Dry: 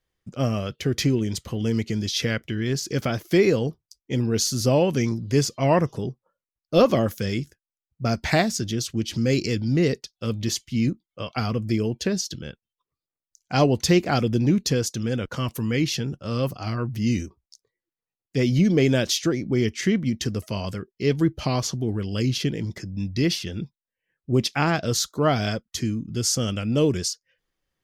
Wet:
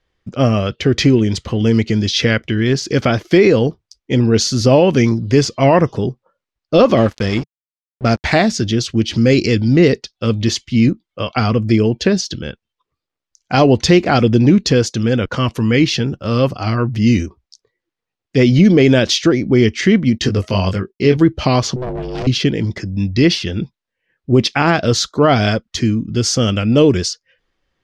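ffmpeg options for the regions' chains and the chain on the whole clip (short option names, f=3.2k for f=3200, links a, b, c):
-filter_complex "[0:a]asettb=1/sr,asplit=3[a][b][c];[a]atrim=end=6.974[d];[b]atrim=start=6.97:end=8.35,asetpts=PTS-STARTPTS,afade=t=in:d=0.004:c=qsin,afade=t=out:st=1.376:d=0.004:c=qsin,aeval=exprs='val(0)+0.00316*(sin(2*PI*50*n/s)+sin(2*PI*2*50*n/s)/2+sin(2*PI*3*50*n/s)/3+sin(2*PI*4*50*n/s)/4+sin(2*PI*5*50*n/s)/5)':c=same,aeval=exprs='sgn(val(0))*max(abs(val(0))-0.015,0)':c=same[e];[c]atrim=start=8.346[f];[d][e]acrossfade=d=0.004:c1=hsin:c2=qsin[g];[g][f]acrossfade=d=0.004:c1=qsin:c2=hsin,asettb=1/sr,asplit=3[h][i][j];[h]atrim=end=20.184[k];[i]atrim=start=20.18:end=21.17,asetpts=PTS-STARTPTS,afade=t=in:d=0.004:c=qsin,afade=t=out:st=0.986:d=0.004:c=qsin,agate=range=-33dB:threshold=-51dB:ratio=3:release=100:detection=peak,asplit=2[l][m];[m]adelay=21,volume=-4.5dB[n];[l][n]amix=inputs=2:normalize=0,atrim=end_sample=43659[o];[j]atrim=start=21.166[p];[k][o]acrossfade=d=0.004:c1=hsin:c2=qsin[q];[q][p]acrossfade=d=0.004:c1=qsin:c2=hsin,asettb=1/sr,asplit=3[r][s][t];[r]atrim=end=21.764[u];[s]atrim=start=21.76:end=22.27,asetpts=PTS-STARTPTS,afade=t=in:d=0.004:c=qsin,afade=t=out:st=0.506:d=0.004:c=qsin,volume=28dB,asoftclip=hard,volume=-28dB,aeval=exprs='val(0)*sin(2*PI*250*n/s)':c=same[v];[t]atrim=start=22.266[w];[u][v]acrossfade=d=0.004:c1=hsin:c2=qsin[x];[x][w]acrossfade=d=0.004:c1=qsin:c2=hsin,lowpass=4.6k,equalizer=f=150:w=2.9:g=-4,alimiter=level_in=12dB:limit=-1dB:release=50:level=0:latency=1,volume=-1dB"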